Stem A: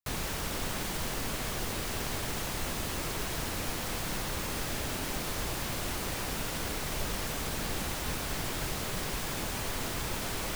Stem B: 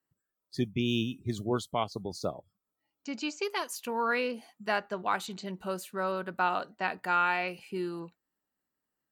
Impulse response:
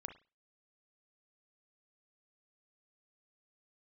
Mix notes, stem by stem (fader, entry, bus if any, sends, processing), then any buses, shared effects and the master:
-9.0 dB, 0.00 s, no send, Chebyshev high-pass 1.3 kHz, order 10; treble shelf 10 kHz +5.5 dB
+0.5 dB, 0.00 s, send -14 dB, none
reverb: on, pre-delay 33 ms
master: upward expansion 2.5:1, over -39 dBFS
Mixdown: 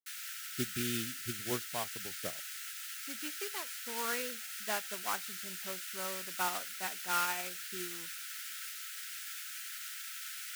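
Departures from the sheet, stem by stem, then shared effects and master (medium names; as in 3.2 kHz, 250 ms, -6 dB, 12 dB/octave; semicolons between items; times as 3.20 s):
stem A -9.0 dB -> +2.0 dB; stem B +0.5 dB -> -6.5 dB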